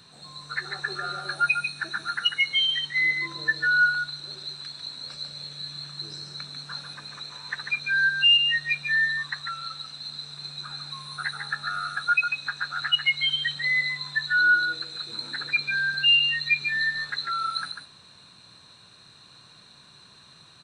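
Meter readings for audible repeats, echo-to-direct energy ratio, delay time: 1, -6.5 dB, 145 ms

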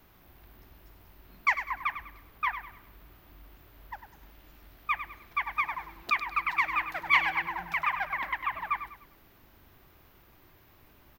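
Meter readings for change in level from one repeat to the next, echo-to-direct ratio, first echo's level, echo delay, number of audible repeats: -9.0 dB, -10.0 dB, -10.5 dB, 100 ms, 3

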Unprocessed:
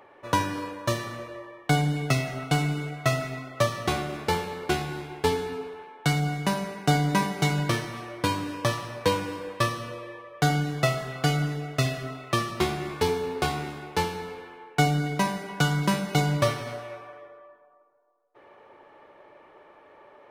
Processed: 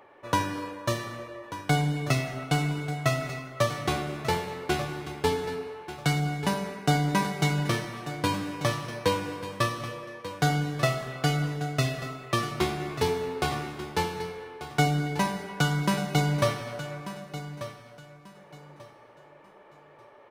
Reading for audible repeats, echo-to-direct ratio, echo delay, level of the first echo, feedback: 2, -12.5 dB, 1189 ms, -13.0 dB, 25%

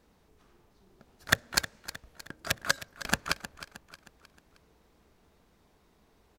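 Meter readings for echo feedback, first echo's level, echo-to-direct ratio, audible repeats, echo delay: 45%, -14.5 dB, -13.5 dB, 3, 312 ms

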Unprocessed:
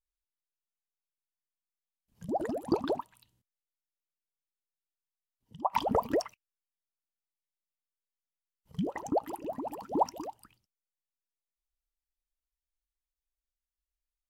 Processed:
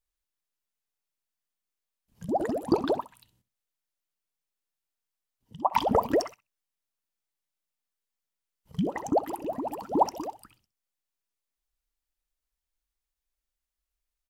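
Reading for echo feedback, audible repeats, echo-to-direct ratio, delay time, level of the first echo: 17%, 2, -17.0 dB, 64 ms, -17.0 dB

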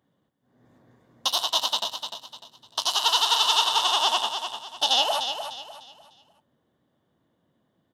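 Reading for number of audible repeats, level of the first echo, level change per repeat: 3, -8.0 dB, -9.5 dB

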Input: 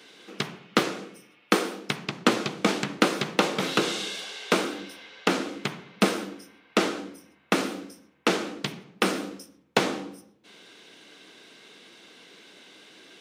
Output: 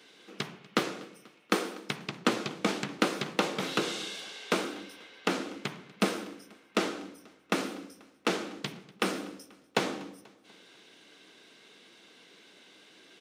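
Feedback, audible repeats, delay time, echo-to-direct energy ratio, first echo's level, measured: 54%, 3, 243 ms, -21.5 dB, -23.0 dB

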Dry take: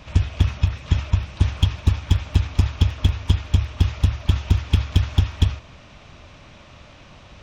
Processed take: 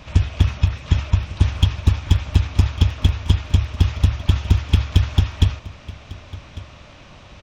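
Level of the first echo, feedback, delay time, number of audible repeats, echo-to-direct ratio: -18.5 dB, no regular repeats, 1150 ms, 1, -18.5 dB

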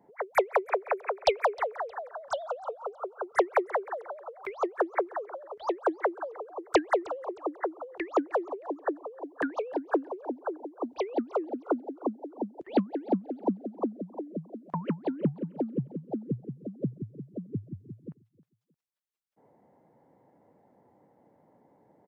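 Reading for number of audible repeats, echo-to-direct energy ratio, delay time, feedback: 2, -20.5 dB, 311 ms, 33%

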